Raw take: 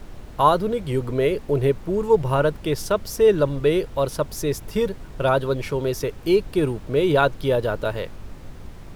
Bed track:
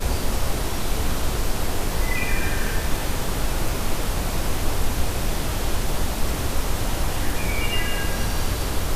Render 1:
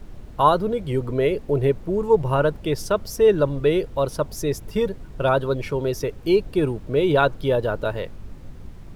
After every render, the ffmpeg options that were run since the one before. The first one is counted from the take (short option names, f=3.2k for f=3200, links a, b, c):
-af "afftdn=nr=6:nf=-39"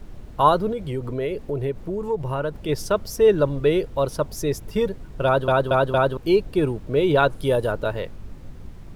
-filter_complex "[0:a]asettb=1/sr,asplit=3[a][b][c];[a]atrim=end=0.724[d];[b]atrim=start=0.72:end=2.69,asetpts=PTS-STARTPTS,afade=t=in:d=0.004:c=qsin,afade=t=out:st=1.966:d=0.004:c=qsin,acompressor=threshold=-26dB:ratio=2:attack=3.2:release=140:knee=1:detection=peak[e];[c]atrim=start=2.686[f];[d][e]acrossfade=d=0.004:c1=hsin:c2=qsin[g];[g][f]acrossfade=d=0.004:c1=qsin:c2=hsin,asettb=1/sr,asplit=3[h][i][j];[h]atrim=end=7.304[k];[i]atrim=start=7.3:end=7.72,asetpts=PTS-STARTPTS,afade=t=in:d=0.004:c=qsin,afade=t=out:st=0.416:d=0.004:c=qsin,equalizer=f=9.8k:w=1.4:g=12.5[l];[j]atrim=start=7.716[m];[k][l]acrossfade=d=0.004:c1=hsin:c2=qsin[n];[n][m]acrossfade=d=0.004:c1=qsin:c2=hsin,asplit=5[o][p][q][r][s];[o]atrim=end=5.482[t];[p]atrim=start=5.248:end=5.482[u];[q]atrim=start=5.248:end=5.482[v];[r]atrim=start=5.248:end=5.482[w];[s]atrim=start=6.168[x];[t][u]acrossfade=d=0.004:c1=hsin:c2=hsin[y];[y][v]acrossfade=d=0.004:c1=hsin:c2=hsin[z];[z][w]acrossfade=d=0.004:c1=hsin:c2=hsin[aa];[aa][x]acrossfade=d=0.004:c1=hsin:c2=hsin"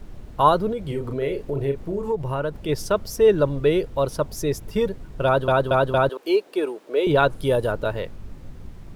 -filter_complex "[0:a]asettb=1/sr,asplit=3[a][b][c];[a]atrim=end=0.844[d];[b]atrim=start=0.84:end=2.12,asetpts=PTS-STARTPTS,afade=t=in:d=0.004:c=qsin,afade=t=out:st=1.276:d=0.004:c=qsin,asplit=2[e][f];[f]adelay=36,volume=-6dB[g];[e][g]amix=inputs=2:normalize=0,atrim=end_sample=56448[h];[c]atrim=start=2.116[i];[d][h]acrossfade=d=0.004:c1=hsin:c2=qsin[j];[j][i]acrossfade=d=0.004:c1=qsin:c2=hsin,asettb=1/sr,asplit=3[k][l][m];[k]atrim=end=6.094[n];[l]atrim=start=6.09:end=7.07,asetpts=PTS-STARTPTS,afade=t=in:d=0.004:c=qsin,afade=t=out:st=0.976:d=0.004:c=qsin,highpass=f=350:w=0.5412,highpass=f=350:w=1.3066[o];[m]atrim=start=7.066[p];[n][o]acrossfade=d=0.004:c1=hsin:c2=qsin[q];[q][p]acrossfade=d=0.004:c1=qsin:c2=hsin"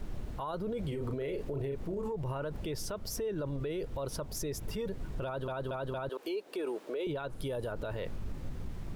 -af "acompressor=threshold=-26dB:ratio=6,alimiter=level_in=5dB:limit=-24dB:level=0:latency=1:release=21,volume=-5dB"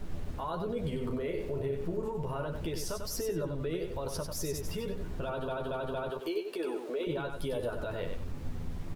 -filter_complex "[0:a]asplit=2[a][b];[b]adelay=12,volume=-5.5dB[c];[a][c]amix=inputs=2:normalize=0,asplit=2[d][e];[e]aecho=0:1:95|190|285:0.501|0.13|0.0339[f];[d][f]amix=inputs=2:normalize=0"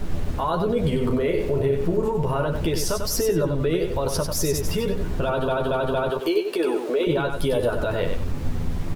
-af "volume=12dB"